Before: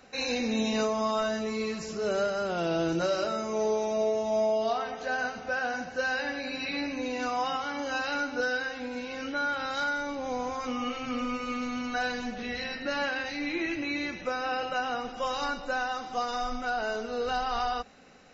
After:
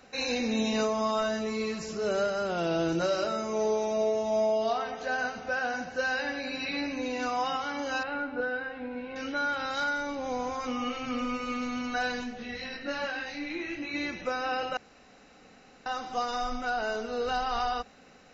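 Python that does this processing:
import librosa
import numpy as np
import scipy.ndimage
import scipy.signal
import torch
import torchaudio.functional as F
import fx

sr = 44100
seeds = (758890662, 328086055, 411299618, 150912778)

y = fx.air_absorb(x, sr, metres=470.0, at=(8.03, 9.16))
y = fx.detune_double(y, sr, cents=fx.line((12.23, 13.0), (13.93, 32.0)), at=(12.23, 13.93), fade=0.02)
y = fx.edit(y, sr, fx.room_tone_fill(start_s=14.77, length_s=1.09), tone=tone)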